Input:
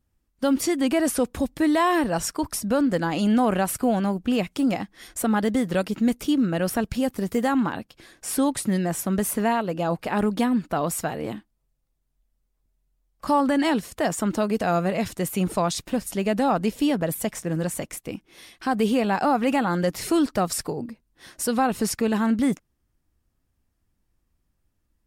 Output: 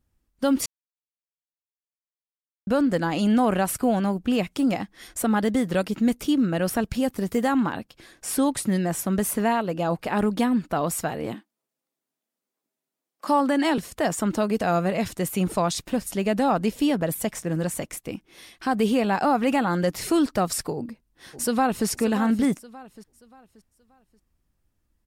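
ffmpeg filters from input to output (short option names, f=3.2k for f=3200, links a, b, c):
-filter_complex "[0:a]asettb=1/sr,asplit=3[a][b][c];[a]atrim=end=11.344[d];[b]atrim=start=11.34:end=13.78,asetpts=PTS-STARTPTS,afade=t=in:d=0.004:c=qsin,afade=t=out:st=2.436:d=0.004:c=qsin,highpass=f=230:w=0.5412,highpass=f=230:w=1.3066[e];[c]atrim=start=13.776[f];[d][e]acrossfade=d=0.004:c1=hsin:c2=qsin[g];[g][f]acrossfade=d=0.004:c1=qsin:c2=hsin,asplit=2[h][i];[i]afade=t=in:st=20.75:d=0.01,afade=t=out:st=21.87:d=0.01,aecho=0:1:580|1160|1740|2320:0.251189|0.087916|0.0307706|0.0107697[j];[h][j]amix=inputs=2:normalize=0,asplit=3[k][l][m];[k]atrim=end=0.66,asetpts=PTS-STARTPTS,afade=t=out:st=0.656:d=0.004:c=hsin[n];[l]atrim=start=0.66:end=2.67,asetpts=PTS-STARTPTS,volume=0[o];[m]atrim=start=2.67,asetpts=PTS-STARTPTS,afade=t=in:d=0.004:c=hsin[p];[n][o][p]concat=n=3:v=0:a=1"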